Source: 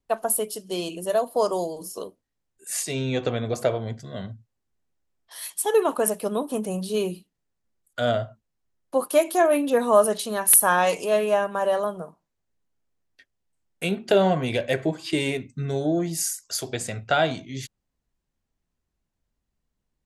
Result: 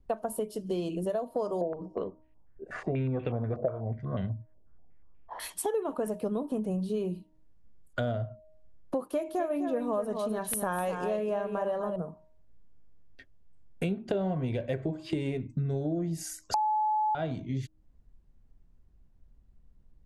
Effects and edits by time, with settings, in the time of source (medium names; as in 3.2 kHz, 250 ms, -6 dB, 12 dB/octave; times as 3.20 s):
1.61–5.40 s: step-sequenced low-pass 8.2 Hz 600–2600 Hz
9.10–11.96 s: delay 253 ms -8.5 dB
16.54–17.15 s: bleep 857 Hz -8 dBFS
whole clip: tilt EQ -3.5 dB/octave; de-hum 312.5 Hz, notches 3; compression 5:1, threshold -35 dBFS; trim +4.5 dB